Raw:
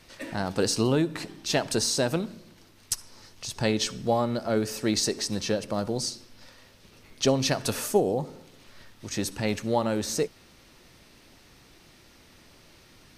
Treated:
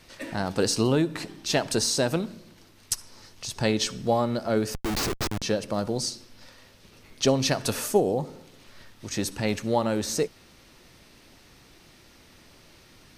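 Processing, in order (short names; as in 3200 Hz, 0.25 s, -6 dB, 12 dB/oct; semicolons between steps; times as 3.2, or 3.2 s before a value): 4.74–5.42 Schmitt trigger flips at -27 dBFS; gain +1 dB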